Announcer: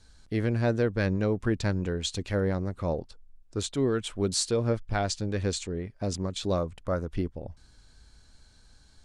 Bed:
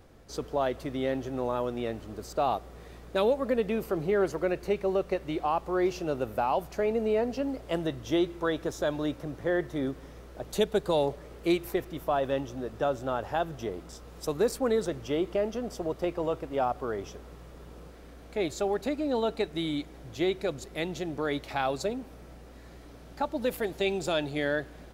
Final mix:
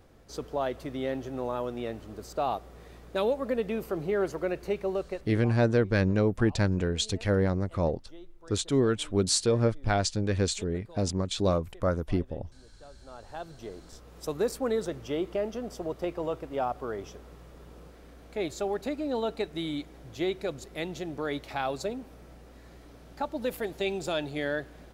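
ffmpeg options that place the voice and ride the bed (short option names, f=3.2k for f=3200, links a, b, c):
-filter_complex "[0:a]adelay=4950,volume=2dB[a];[1:a]volume=19.5dB,afade=t=out:st=4.86:d=0.7:silence=0.0841395,afade=t=in:st=12.97:d=1.34:silence=0.0841395[b];[a][b]amix=inputs=2:normalize=0"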